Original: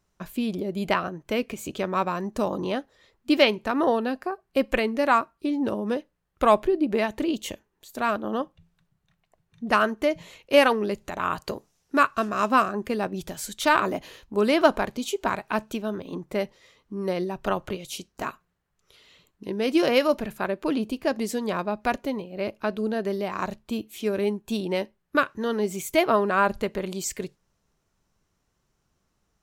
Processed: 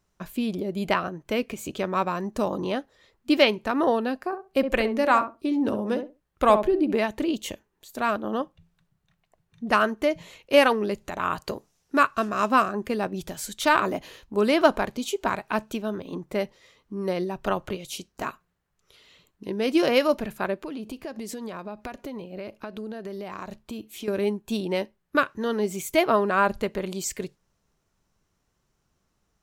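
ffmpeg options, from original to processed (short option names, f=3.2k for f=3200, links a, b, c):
-filter_complex "[0:a]asettb=1/sr,asplit=3[a][b][c];[a]atrim=end=4.264[d];[b]atrim=start=4.26:end=6.95,asetpts=PTS-STARTPTS,afade=t=in:d=0.004:c=qsin,afade=t=out:st=2.686:d=0.004:c=qsin,asplit=2[e][f];[f]adelay=66,lowpass=f=840:p=1,volume=-6.5dB,asplit=2[g][h];[h]adelay=66,lowpass=f=840:p=1,volume=0.19,asplit=2[i][j];[j]adelay=66,lowpass=f=840:p=1,volume=0.19[k];[e][g][i][k]amix=inputs=4:normalize=0,atrim=end_sample=118629[l];[c]atrim=start=6.946[m];[d][l]acrossfade=d=0.004:c1=hsin:c2=qsin[n];[n][m]acrossfade=d=0.004:c1=qsin:c2=hsin,asettb=1/sr,asplit=3[o][p][q];[o]atrim=end=20.554[r];[p]atrim=start=20.55:end=24.08,asetpts=PTS-STARTPTS,afade=t=in:d=0.004:c=qsin,afade=t=out:st=3.526:d=0.004:c=qsin,acompressor=threshold=-31dB:ratio=8:attack=3.2:release=140:knee=1:detection=peak[s];[q]atrim=start=24.076[t];[r][s]acrossfade=d=0.004:c1=hsin:c2=qsin[u];[u][t]acrossfade=d=0.004:c1=qsin:c2=hsin"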